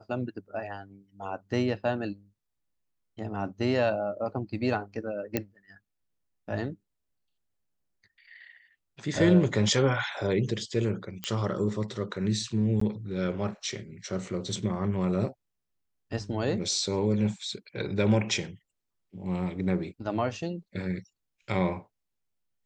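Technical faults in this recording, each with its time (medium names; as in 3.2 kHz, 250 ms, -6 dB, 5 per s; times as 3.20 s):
5.37 s: pop -12 dBFS
11.24 s: pop -15 dBFS
12.80–12.81 s: dropout 14 ms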